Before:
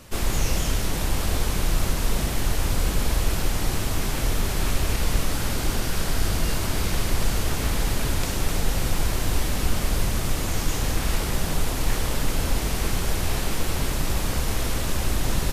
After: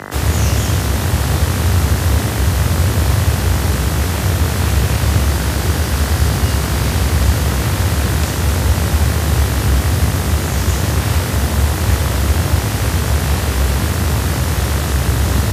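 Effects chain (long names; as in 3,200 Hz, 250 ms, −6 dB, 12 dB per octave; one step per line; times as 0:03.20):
hum with harmonics 50 Hz, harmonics 39, −36 dBFS −1 dB per octave
frequency shifter +59 Hz
level +6.5 dB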